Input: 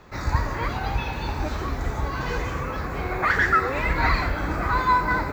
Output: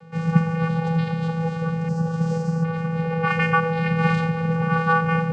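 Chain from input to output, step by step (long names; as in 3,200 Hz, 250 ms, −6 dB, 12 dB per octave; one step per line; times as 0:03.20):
0:01.88–0:02.64: drawn EQ curve 780 Hz 0 dB, 2,900 Hz −20 dB, 5,200 Hz +8 dB
channel vocoder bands 8, square 164 Hz
level +5 dB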